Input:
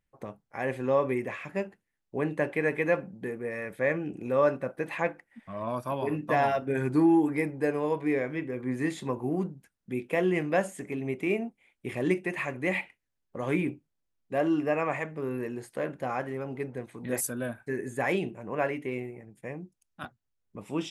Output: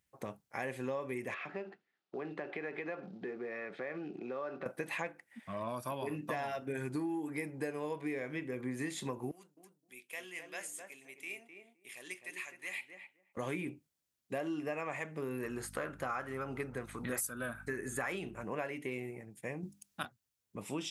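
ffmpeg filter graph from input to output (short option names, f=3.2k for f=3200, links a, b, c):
-filter_complex "[0:a]asettb=1/sr,asplit=3[a][b][c];[a]atrim=end=1.344[d];[b]atrim=start=1.34:end=4.66,asetpts=PTS-STARTPTS,afade=t=in:d=0.004:c=qsin,afade=t=out:st=3.316:d=0.004:c=qsin,acompressor=threshold=-42dB:ratio=3:attack=3.2:release=140:knee=1:detection=peak,acrusher=bits=8:mode=log:mix=0:aa=0.000001,highpass=f=150:w=0.5412,highpass=f=150:w=1.3066,equalizer=f=380:t=q:w=4:g=8,equalizer=f=730:t=q:w=4:g=8,equalizer=f=1.3k:t=q:w=4:g=8,lowpass=f=4.4k:w=0.5412,lowpass=f=4.4k:w=1.3066[e];[c]atrim=start=4.656[f];[d][e]acrossfade=d=0.004:c1=hsin:c2=qsin[g];[g][f]acrossfade=d=0.004:c1=qsin:c2=hsin,asettb=1/sr,asplit=3[h][i][j];[h]atrim=end=9.314[k];[i]atrim=start=9.31:end=13.37,asetpts=PTS-STARTPTS,afade=t=in:d=0.004:c=qsin,afade=t=out:st=4.056:d=0.004:c=qsin,lowpass=f=3.9k:p=1,aderivative,asplit=2[l][m];[m]adelay=258,lowpass=f=910:p=1,volume=-3.5dB,asplit=2[n][o];[o]adelay=258,lowpass=f=910:p=1,volume=0.17,asplit=2[p][q];[q]adelay=258,lowpass=f=910:p=1,volume=0.17[r];[l][n][p][r]amix=inputs=4:normalize=0,atrim=end_sample=179046[s];[j]atrim=start=13.366[t];[k][s]acrossfade=d=0.004:c1=hsin:c2=qsin[u];[u][t]acrossfade=d=0.004:c1=qsin:c2=hsin,asettb=1/sr,asplit=3[v][w][x];[v]atrim=end=15.434[y];[w]atrim=start=15.43:end=18.44,asetpts=PTS-STARTPTS,afade=t=in:d=0.004:c=qsin,afade=t=out:st=3.006:d=0.004:c=qsin,aeval=exprs='val(0)+0.00398*(sin(2*PI*50*n/s)+sin(2*PI*2*50*n/s)/2+sin(2*PI*3*50*n/s)/3+sin(2*PI*4*50*n/s)/4+sin(2*PI*5*50*n/s)/5)':c=same,equalizer=f=1.3k:w=2.8:g=13.5[z];[x]atrim=start=18.436[aa];[y][z]acrossfade=d=0.004:c1=hsin:c2=qsin[ab];[ab][aa]acrossfade=d=0.004:c1=qsin:c2=hsin,asettb=1/sr,asplit=3[ac][ad][ae];[ac]atrim=end=19.634[af];[ad]atrim=start=19.63:end=20.03,asetpts=PTS-STARTPTS,afade=t=in:d=0.004:c=qsin,afade=t=out:st=0.396:d=0.004:c=qsin,bandreject=f=50:t=h:w=6,bandreject=f=100:t=h:w=6,bandreject=f=150:t=h:w=6,bandreject=f=200:t=h:w=6,bandreject=f=250:t=h:w=6,bandreject=f=300:t=h:w=6,acontrast=65[ag];[ae]atrim=start=20.026[ah];[af][ag]acrossfade=d=0.004:c1=hsin:c2=qsin[ai];[ai][ah]acrossfade=d=0.004:c1=qsin:c2=hsin,highpass=63,highshelf=f=2.7k:g=10.5,acompressor=threshold=-33dB:ratio=6,volume=-2dB"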